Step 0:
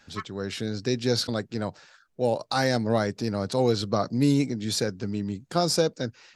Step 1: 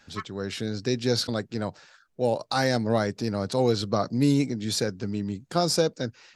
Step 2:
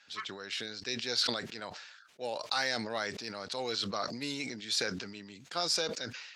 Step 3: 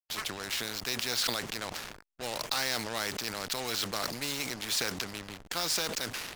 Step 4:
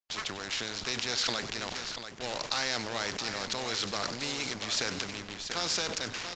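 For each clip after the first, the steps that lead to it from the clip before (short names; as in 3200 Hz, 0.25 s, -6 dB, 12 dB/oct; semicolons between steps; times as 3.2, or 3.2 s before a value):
nothing audible
band-pass 3000 Hz, Q 0.81; sustainer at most 49 dB/s
backlash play -42 dBFS; spectral compressor 2:1; gain +3 dB
tapped delay 95/687 ms -14.5/-9 dB; downsampling 16000 Hz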